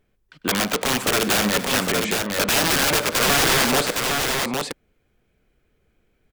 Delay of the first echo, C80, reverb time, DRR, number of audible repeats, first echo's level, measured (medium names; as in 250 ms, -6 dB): 98 ms, no reverb, no reverb, no reverb, 4, -17.0 dB